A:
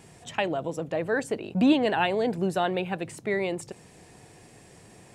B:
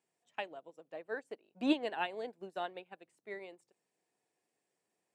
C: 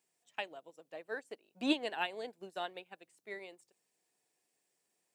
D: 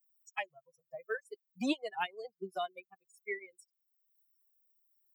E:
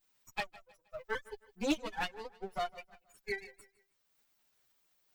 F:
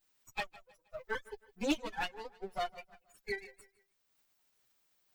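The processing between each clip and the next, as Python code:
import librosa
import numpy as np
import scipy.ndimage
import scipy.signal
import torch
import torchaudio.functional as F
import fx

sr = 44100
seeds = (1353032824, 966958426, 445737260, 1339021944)

y1 = scipy.signal.sosfilt(scipy.signal.butter(2, 310.0, 'highpass', fs=sr, output='sos'), x)
y1 = fx.upward_expand(y1, sr, threshold_db=-37.0, expansion=2.5)
y1 = y1 * librosa.db_to_amplitude(-4.5)
y2 = fx.high_shelf(y1, sr, hz=2700.0, db=10.0)
y2 = y2 * librosa.db_to_amplitude(-2.0)
y3 = fx.bin_expand(y2, sr, power=3.0)
y3 = fx.band_squash(y3, sr, depth_pct=70)
y3 = y3 * librosa.db_to_amplitude(7.5)
y4 = fx.lower_of_two(y3, sr, delay_ms=9.7)
y4 = fx.echo_feedback(y4, sr, ms=158, feedback_pct=37, wet_db=-20)
y4 = y4 * librosa.db_to_amplitude(1.5)
y5 = fx.spec_quant(y4, sr, step_db=15)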